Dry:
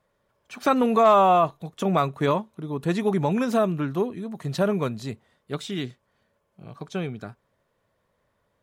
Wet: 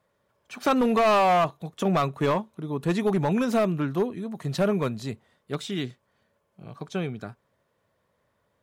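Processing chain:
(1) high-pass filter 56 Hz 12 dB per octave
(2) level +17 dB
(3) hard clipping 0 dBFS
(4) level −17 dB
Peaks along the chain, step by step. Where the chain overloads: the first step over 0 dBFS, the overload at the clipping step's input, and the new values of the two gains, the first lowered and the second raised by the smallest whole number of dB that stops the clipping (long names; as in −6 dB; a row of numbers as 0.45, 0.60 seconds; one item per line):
−8.0, +9.0, 0.0, −17.0 dBFS
step 2, 9.0 dB
step 2 +8 dB, step 4 −8 dB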